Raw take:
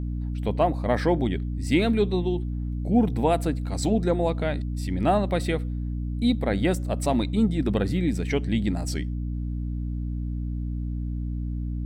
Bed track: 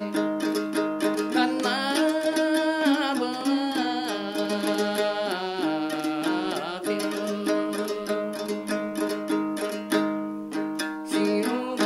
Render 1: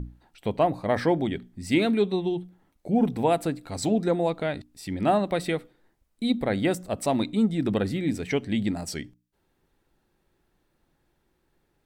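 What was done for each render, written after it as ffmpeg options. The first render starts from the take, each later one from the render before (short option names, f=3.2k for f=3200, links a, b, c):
-af "bandreject=f=60:t=h:w=6,bandreject=f=120:t=h:w=6,bandreject=f=180:t=h:w=6,bandreject=f=240:t=h:w=6,bandreject=f=300:t=h:w=6"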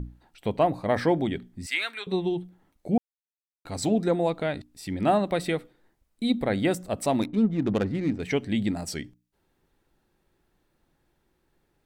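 -filter_complex "[0:a]asettb=1/sr,asplit=3[a][b][c];[a]atrim=end=1.664[d];[b]atrim=start=1.66:end=2.07,asetpts=PTS-STARTPTS,afade=t=in:d=0.004:c=qsin,afade=t=out:st=0.406:d=0.004:c=qsin,highpass=f=1.5k:t=q:w=1.6[e];[c]atrim=start=2.066[f];[d][e]acrossfade=d=0.004:c1=hsin:c2=qsin[g];[g][f]acrossfade=d=0.004:c1=qsin:c2=hsin,asettb=1/sr,asplit=3[h][i][j];[h]atrim=end=7.214[k];[i]atrim=start=7.21:end=8.2,asetpts=PTS-STARTPTS,afade=t=in:d=0.004:c=qsin,afade=t=out:st=0.986:d=0.004:c=qsin,adynamicsmooth=sensitivity=4:basefreq=920[l];[j]atrim=start=8.196[m];[k][l]acrossfade=d=0.004:c1=hsin:c2=qsin[n];[n][m]acrossfade=d=0.004:c1=qsin:c2=hsin,asplit=3[o][p][q];[o]atrim=end=2.98,asetpts=PTS-STARTPTS,afade=t=out:st=2.976:d=0.004:c=hsin[r];[p]atrim=start=2.98:end=3.65,asetpts=PTS-STARTPTS,volume=0[s];[q]atrim=start=3.65,asetpts=PTS-STARTPTS,afade=t=in:d=0.004:c=hsin[t];[r][s][t]concat=n=3:v=0:a=1"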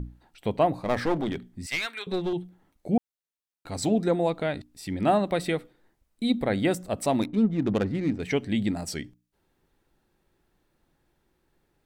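-filter_complex "[0:a]asettb=1/sr,asplit=3[a][b][c];[a]atrim=end=0.774[d];[b]atrim=start=0.77:end=2.33,asetpts=PTS-STARTPTS,afade=t=in:d=0.004:c=qsin,afade=t=out:st=1.556:d=0.004:c=qsin,aeval=exprs='clip(val(0),-1,0.0422)':c=same[e];[c]atrim=start=2.326[f];[d][e]acrossfade=d=0.004:c1=hsin:c2=qsin[g];[g][f]acrossfade=d=0.004:c1=qsin:c2=hsin"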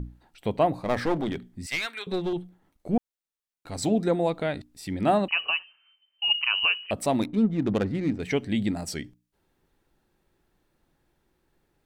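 -filter_complex "[0:a]asettb=1/sr,asplit=3[a][b][c];[a]atrim=end=2.364[d];[b]atrim=start=2.36:end=3.78,asetpts=PTS-STARTPTS,afade=t=in:d=0.004:c=qsin,afade=t=out:st=1.416:d=0.004:c=qsin,aeval=exprs='if(lt(val(0),0),0.708*val(0),val(0))':c=same[e];[c]atrim=start=3.776[f];[d][e]acrossfade=d=0.004:c1=hsin:c2=qsin[g];[g][f]acrossfade=d=0.004:c1=qsin:c2=hsin,asettb=1/sr,asplit=3[h][i][j];[h]atrim=end=5.284[k];[i]atrim=start=5.28:end=6.91,asetpts=PTS-STARTPTS,afade=t=in:d=0.004:c=qsin,afade=t=out:st=1.626:d=0.004:c=qsin,lowpass=f=2.6k:t=q:w=0.5098,lowpass=f=2.6k:t=q:w=0.6013,lowpass=f=2.6k:t=q:w=0.9,lowpass=f=2.6k:t=q:w=2.563,afreqshift=-3100[l];[j]atrim=start=6.906[m];[k][l]acrossfade=d=0.004:c1=hsin:c2=qsin[n];[n][m]acrossfade=d=0.004:c1=qsin:c2=hsin"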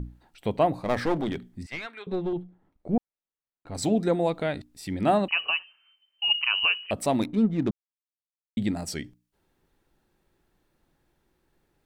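-filter_complex "[0:a]asettb=1/sr,asplit=3[a][b][c];[a]atrim=end=1.634[d];[b]atrim=start=1.63:end=3.75,asetpts=PTS-STARTPTS,afade=t=in:d=0.004:c=qsin,afade=t=out:st=2.116:d=0.004:c=qsin,lowpass=f=1.1k:p=1[e];[c]atrim=start=3.746[f];[d][e]acrossfade=d=0.004:c1=hsin:c2=qsin[g];[g][f]acrossfade=d=0.004:c1=qsin:c2=hsin,asplit=3[h][i][j];[h]atrim=end=7.71,asetpts=PTS-STARTPTS,afade=t=out:st=7.706:d=0.004:c=hsin[k];[i]atrim=start=7.71:end=8.57,asetpts=PTS-STARTPTS,volume=0[l];[j]atrim=start=8.57,asetpts=PTS-STARTPTS,afade=t=in:d=0.004:c=hsin[m];[k][l][m]concat=n=3:v=0:a=1"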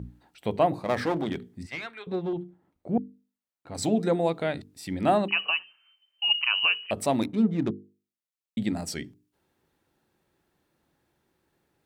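-af "highpass=76,bandreject=f=50:t=h:w=6,bandreject=f=100:t=h:w=6,bandreject=f=150:t=h:w=6,bandreject=f=200:t=h:w=6,bandreject=f=250:t=h:w=6,bandreject=f=300:t=h:w=6,bandreject=f=350:t=h:w=6,bandreject=f=400:t=h:w=6,bandreject=f=450:t=h:w=6"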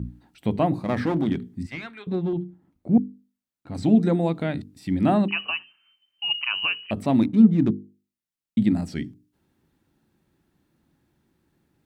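-filter_complex "[0:a]acrossover=split=3800[a][b];[b]acompressor=threshold=-50dB:ratio=4:attack=1:release=60[c];[a][c]amix=inputs=2:normalize=0,lowshelf=f=350:t=q:w=1.5:g=7"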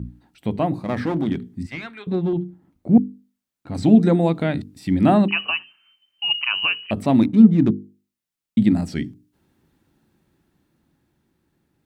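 -af "dynaudnorm=f=210:g=17:m=7dB"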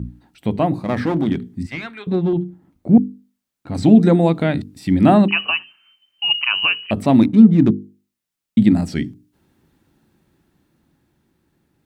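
-af "volume=3.5dB,alimiter=limit=-1dB:level=0:latency=1"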